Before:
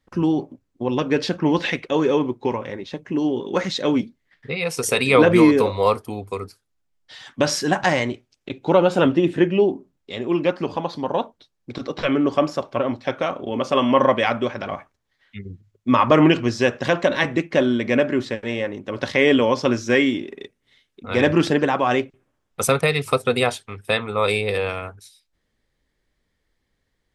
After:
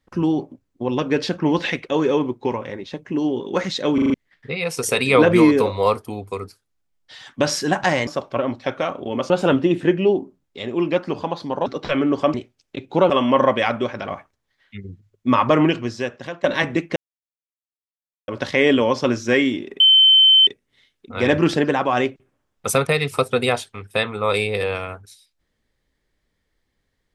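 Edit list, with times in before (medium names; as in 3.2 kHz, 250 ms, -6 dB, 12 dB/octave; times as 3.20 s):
3.94 s: stutter in place 0.04 s, 5 plays
8.07–8.83 s: swap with 12.48–13.71 s
11.19–11.80 s: delete
15.93–17.05 s: fade out, to -16.5 dB
17.57–18.89 s: mute
20.41 s: add tone 3.08 kHz -8.5 dBFS 0.67 s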